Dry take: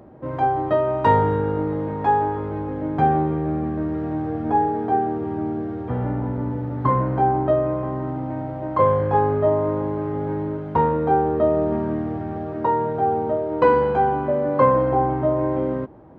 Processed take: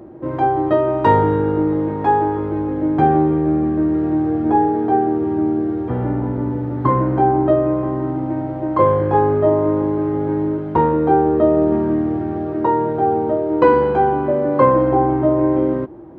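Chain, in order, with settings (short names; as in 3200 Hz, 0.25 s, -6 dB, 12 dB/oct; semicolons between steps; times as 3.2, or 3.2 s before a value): bell 340 Hz +14.5 dB 0.23 oct; gain +2.5 dB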